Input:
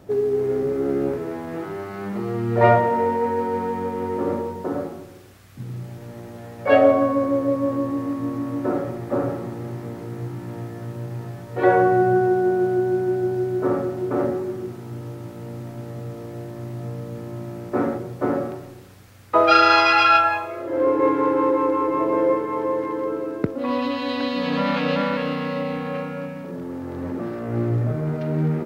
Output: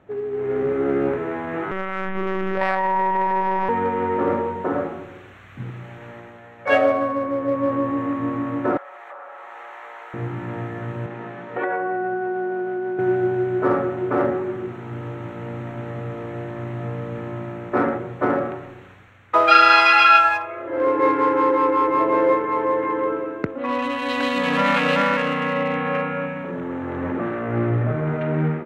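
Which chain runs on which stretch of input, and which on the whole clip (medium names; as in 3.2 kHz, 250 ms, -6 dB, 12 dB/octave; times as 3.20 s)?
1.71–3.69 s: treble shelf 2.1 kHz +8 dB + monotone LPC vocoder at 8 kHz 190 Hz + compression, threshold -20 dBFS
5.70–6.67 s: bass shelf 490 Hz -6.5 dB + companded quantiser 8-bit
8.77–10.14 s: high-pass 700 Hz 24 dB/octave + compression 5:1, threshold -41 dBFS
11.06–12.99 s: high-pass 170 Hz 24 dB/octave + distance through air 73 m + compression 8:1, threshold -26 dBFS
whole clip: local Wiener filter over 9 samples; level rider gain up to 11 dB; peaking EQ 2.1 kHz +11.5 dB 2.7 oct; trim -9.5 dB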